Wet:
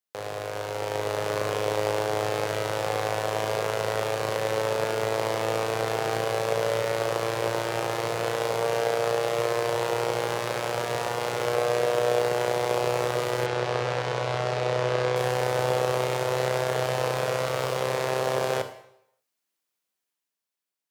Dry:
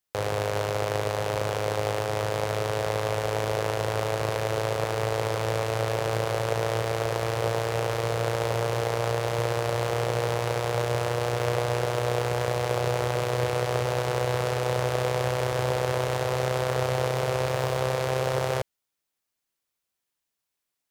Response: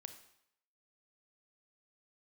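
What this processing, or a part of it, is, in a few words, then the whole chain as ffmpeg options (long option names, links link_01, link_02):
far laptop microphone: -filter_complex "[1:a]atrim=start_sample=2205[link_01];[0:a][link_01]afir=irnorm=-1:irlink=0,highpass=170,dynaudnorm=framelen=170:gausssize=11:maxgain=6.5dB,asettb=1/sr,asplit=3[link_02][link_03][link_04];[link_02]atrim=end=13.464[link_05];[link_03]atrim=start=13.46:end=15.16,asetpts=PTS-STARTPTS,afade=type=in:duration=0.004:curve=qsin,afade=type=out:start_time=1.696:duration=0.004:curve=qsin,lowpass=5600[link_06];[link_04]atrim=start=15.156[link_07];[link_05][link_06]acrossfade=duration=0.004:curve1=hsin:curve2=qsin[link_08];[link_08][link_07]acrossfade=duration=0.004:curve1=qsin:curve2=hsin"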